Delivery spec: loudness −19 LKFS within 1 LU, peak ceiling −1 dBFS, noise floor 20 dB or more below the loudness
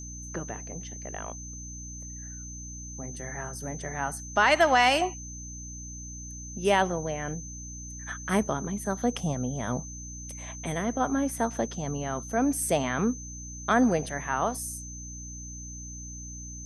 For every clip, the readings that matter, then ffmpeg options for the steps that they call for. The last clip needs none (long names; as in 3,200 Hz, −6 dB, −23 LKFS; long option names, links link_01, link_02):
mains hum 60 Hz; hum harmonics up to 300 Hz; level of the hum −40 dBFS; interfering tone 6,200 Hz; level of the tone −41 dBFS; integrated loudness −30.0 LKFS; sample peak −9.0 dBFS; target loudness −19.0 LKFS
→ -af "bandreject=frequency=60:width_type=h:width=4,bandreject=frequency=120:width_type=h:width=4,bandreject=frequency=180:width_type=h:width=4,bandreject=frequency=240:width_type=h:width=4,bandreject=frequency=300:width_type=h:width=4"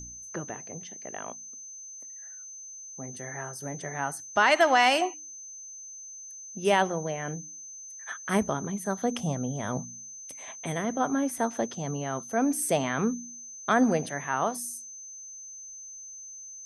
mains hum none found; interfering tone 6,200 Hz; level of the tone −41 dBFS
→ -af "bandreject=frequency=6200:width=30"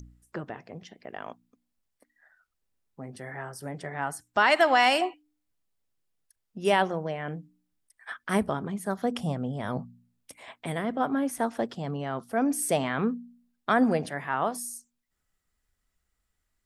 interfering tone none found; integrated loudness −28.0 LKFS; sample peak −9.0 dBFS; target loudness −19.0 LKFS
→ -af "volume=9dB,alimiter=limit=-1dB:level=0:latency=1"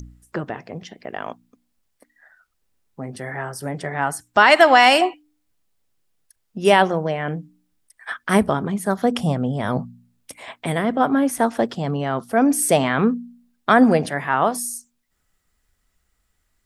integrated loudness −19.0 LKFS; sample peak −1.0 dBFS; background noise floor −71 dBFS